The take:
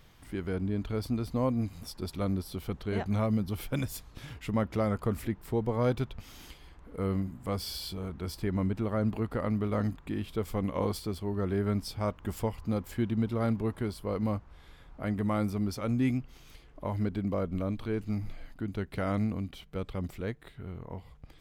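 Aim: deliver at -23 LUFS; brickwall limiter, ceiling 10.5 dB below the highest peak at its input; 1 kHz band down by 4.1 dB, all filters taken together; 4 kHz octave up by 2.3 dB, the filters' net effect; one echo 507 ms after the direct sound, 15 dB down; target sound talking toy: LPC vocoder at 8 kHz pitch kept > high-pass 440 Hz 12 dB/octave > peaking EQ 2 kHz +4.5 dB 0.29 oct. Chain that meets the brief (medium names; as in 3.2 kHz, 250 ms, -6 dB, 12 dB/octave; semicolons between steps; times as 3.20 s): peaking EQ 1 kHz -5.5 dB; peaking EQ 4 kHz +3 dB; peak limiter -27 dBFS; delay 507 ms -15 dB; LPC vocoder at 8 kHz pitch kept; high-pass 440 Hz 12 dB/octave; peaking EQ 2 kHz +4.5 dB 0.29 oct; trim +23 dB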